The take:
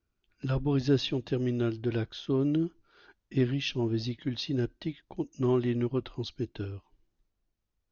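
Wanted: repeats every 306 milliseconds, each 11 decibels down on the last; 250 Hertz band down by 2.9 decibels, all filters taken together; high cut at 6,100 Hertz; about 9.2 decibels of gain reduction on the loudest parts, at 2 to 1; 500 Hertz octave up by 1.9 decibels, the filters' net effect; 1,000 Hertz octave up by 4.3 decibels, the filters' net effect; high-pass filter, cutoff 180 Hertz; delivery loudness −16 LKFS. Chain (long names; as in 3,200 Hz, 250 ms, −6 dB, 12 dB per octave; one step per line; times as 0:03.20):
high-pass filter 180 Hz
low-pass filter 6,100 Hz
parametric band 250 Hz −5.5 dB
parametric band 500 Hz +5.5 dB
parametric band 1,000 Hz +4 dB
downward compressor 2 to 1, threshold −37 dBFS
repeating echo 306 ms, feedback 28%, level −11 dB
level +22 dB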